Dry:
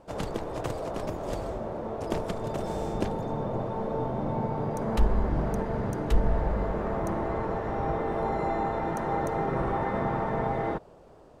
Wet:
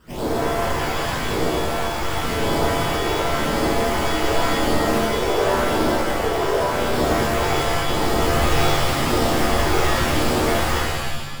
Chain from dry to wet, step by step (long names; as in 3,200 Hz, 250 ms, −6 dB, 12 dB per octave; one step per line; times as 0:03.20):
each half-wave held at its own peak
brickwall limiter −20.5 dBFS, peak gain reduction 38 dB
ring modulation 440 Hz
all-pass phaser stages 12, 0.9 Hz, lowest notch 180–2,400 Hz
reverb with rising layers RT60 1.2 s, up +7 semitones, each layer −2 dB, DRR −7 dB